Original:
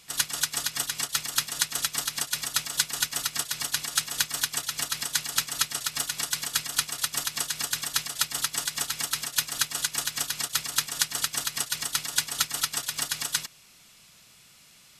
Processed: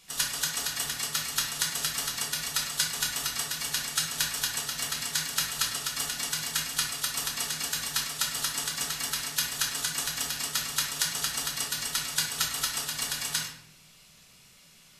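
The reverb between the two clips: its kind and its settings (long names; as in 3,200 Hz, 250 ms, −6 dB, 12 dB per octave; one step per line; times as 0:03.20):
rectangular room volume 150 cubic metres, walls mixed, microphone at 1.1 metres
level −4.5 dB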